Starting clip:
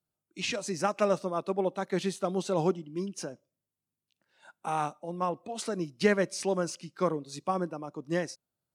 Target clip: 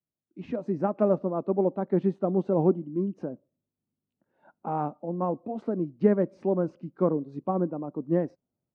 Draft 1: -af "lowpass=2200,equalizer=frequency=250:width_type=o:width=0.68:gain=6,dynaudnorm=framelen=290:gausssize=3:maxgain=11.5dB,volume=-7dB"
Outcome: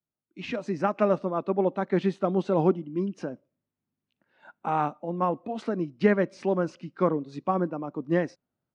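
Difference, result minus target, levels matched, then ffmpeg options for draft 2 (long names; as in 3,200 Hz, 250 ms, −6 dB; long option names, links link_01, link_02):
2,000 Hz band +13.0 dB
-af "lowpass=730,equalizer=frequency=250:width_type=o:width=0.68:gain=6,dynaudnorm=framelen=290:gausssize=3:maxgain=11.5dB,volume=-7dB"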